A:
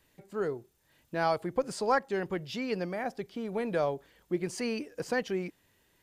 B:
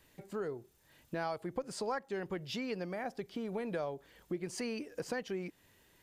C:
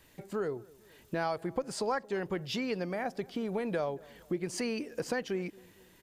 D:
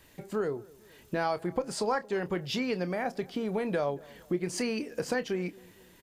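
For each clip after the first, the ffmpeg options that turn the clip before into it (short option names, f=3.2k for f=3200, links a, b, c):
-af "acompressor=threshold=-40dB:ratio=3,volume=2.5dB"
-filter_complex "[0:a]asplit=2[a][b];[b]adelay=228,lowpass=f=1.3k:p=1,volume=-22.5dB,asplit=2[c][d];[d]adelay=228,lowpass=f=1.3k:p=1,volume=0.51,asplit=2[e][f];[f]adelay=228,lowpass=f=1.3k:p=1,volume=0.51[g];[a][c][e][g]amix=inputs=4:normalize=0,volume=4.5dB"
-filter_complex "[0:a]asplit=2[a][b];[b]adelay=28,volume=-12.5dB[c];[a][c]amix=inputs=2:normalize=0,volume=2.5dB"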